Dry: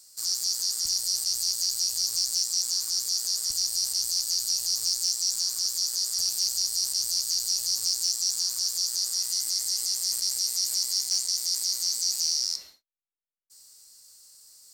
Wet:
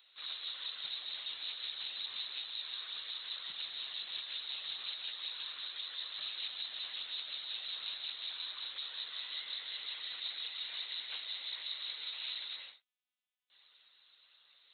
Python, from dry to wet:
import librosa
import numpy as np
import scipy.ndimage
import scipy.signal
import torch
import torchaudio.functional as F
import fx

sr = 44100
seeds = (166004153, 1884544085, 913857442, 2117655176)

y = fx.lpc_monotone(x, sr, seeds[0], pitch_hz=250.0, order=16)
y = np.diff(y, prepend=0.0)
y = y * 10.0 ** (17.0 / 20.0)